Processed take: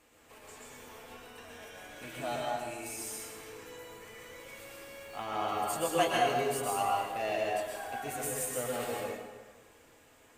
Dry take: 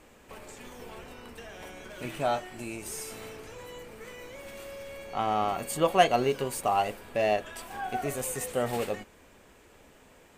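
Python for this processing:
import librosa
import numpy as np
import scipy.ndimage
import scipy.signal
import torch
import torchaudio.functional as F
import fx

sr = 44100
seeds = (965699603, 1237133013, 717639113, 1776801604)

y = fx.tilt_eq(x, sr, slope=1.5)
y = fx.quant_dither(y, sr, seeds[0], bits=10, dither='none', at=(4.93, 5.65))
y = fx.notch_comb(y, sr, f0_hz=190.0)
y = fx.rev_plate(y, sr, seeds[1], rt60_s=1.4, hf_ratio=0.6, predelay_ms=105, drr_db=-3.5)
y = y * librosa.db_to_amplitude(-7.5)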